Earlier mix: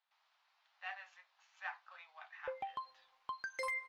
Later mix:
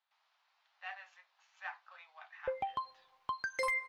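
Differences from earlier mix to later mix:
background +5.0 dB
master: add low-shelf EQ 240 Hz +7.5 dB

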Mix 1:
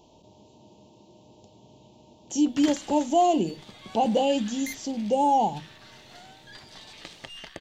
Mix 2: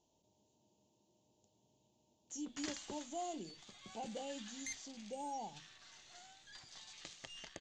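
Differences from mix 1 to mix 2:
speech −11.5 dB
master: add transistor ladder low-pass 7,500 Hz, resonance 65%

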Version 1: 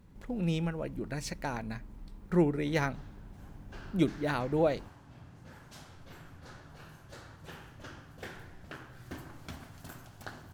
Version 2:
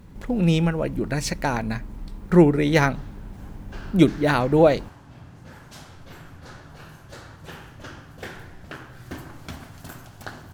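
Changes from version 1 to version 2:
speech +11.5 dB
background +7.5 dB

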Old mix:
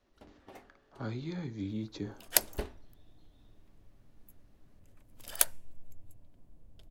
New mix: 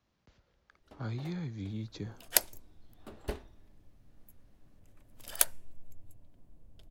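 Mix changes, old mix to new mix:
speech: send off
first sound: entry +0.70 s

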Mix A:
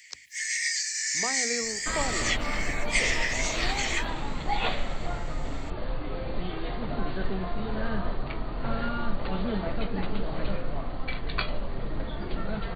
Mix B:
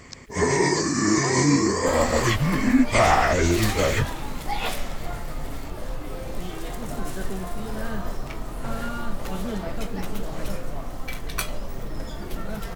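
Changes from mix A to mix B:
first sound: remove Butterworth high-pass 1,800 Hz 72 dB per octave
second sound: remove linear-phase brick-wall low-pass 4,700 Hz

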